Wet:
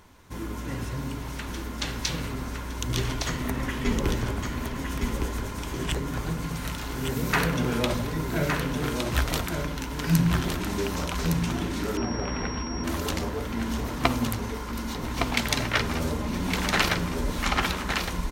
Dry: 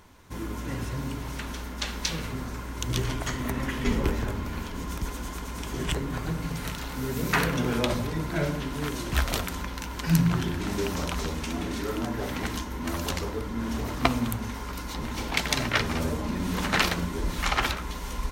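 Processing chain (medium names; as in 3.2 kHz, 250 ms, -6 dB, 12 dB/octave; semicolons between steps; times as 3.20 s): delay 1162 ms -5 dB; 11.97–12.84 s: class-D stage that switches slowly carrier 5.6 kHz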